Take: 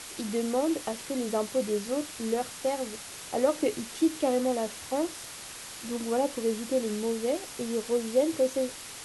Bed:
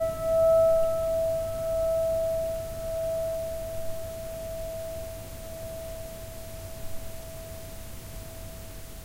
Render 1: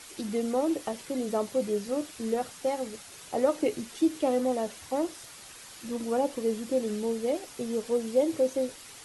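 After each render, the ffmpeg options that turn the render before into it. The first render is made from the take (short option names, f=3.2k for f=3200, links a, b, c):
-af "afftdn=nr=7:nf=-43"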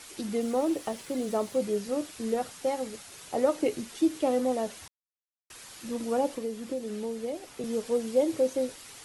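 -filter_complex "[0:a]asettb=1/sr,asplit=3[a][b][c];[a]atrim=end=0.414[d];[b]atrim=start=0.41:end=1.57,asetpts=PTS-STARTPTS,afade=t=in:d=0.004:c=qsin,afade=t=out:st=1.156:d=0.004:c=qsin,acrusher=bits=8:mix=0:aa=0.5[e];[c]atrim=start=1.566[f];[d][e]acrossfade=d=0.004:c1=hsin:c2=qsin[g];[g][f]acrossfade=d=0.004:c1=qsin:c2=hsin,asettb=1/sr,asplit=3[h][i][j];[h]atrim=end=6.354[k];[i]atrim=start=6.35:end=7.64,asetpts=PTS-STARTPTS,afade=t=in:d=0.004:c=qsin,afade=t=out:st=1.286:d=0.004:c=qsin,acrossover=split=200|3600[l][m][n];[l]acompressor=threshold=-46dB:ratio=4[o];[m]acompressor=threshold=-32dB:ratio=4[p];[n]acompressor=threshold=-52dB:ratio=4[q];[o][p][q]amix=inputs=3:normalize=0[r];[j]atrim=start=7.636[s];[k][r]acrossfade=d=0.004:c1=hsin:c2=qsin[t];[t][s]acrossfade=d=0.004:c1=qsin:c2=hsin,asplit=3[u][v][w];[u]atrim=end=4.88,asetpts=PTS-STARTPTS,afade=t=out:st=4.876:d=0.004:c=hsin[x];[v]atrim=start=4.88:end=5.5,asetpts=PTS-STARTPTS,volume=0[y];[w]atrim=start=5.5,asetpts=PTS-STARTPTS,afade=t=in:d=0.004:c=hsin[z];[x][y][z]concat=n=3:v=0:a=1"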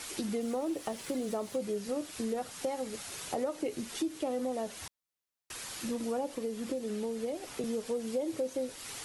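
-filter_complex "[0:a]asplit=2[a][b];[b]alimiter=limit=-22.5dB:level=0:latency=1,volume=-2.5dB[c];[a][c]amix=inputs=2:normalize=0,acompressor=threshold=-34dB:ratio=3"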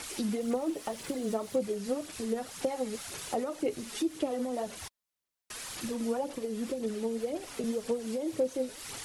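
-af "aphaser=in_gain=1:out_gain=1:delay=4.8:decay=0.44:speed=1.9:type=sinusoidal"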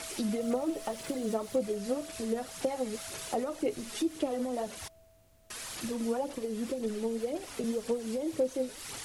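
-filter_complex "[1:a]volume=-23.5dB[a];[0:a][a]amix=inputs=2:normalize=0"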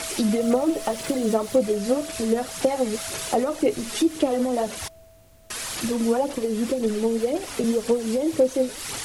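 -af "volume=10dB"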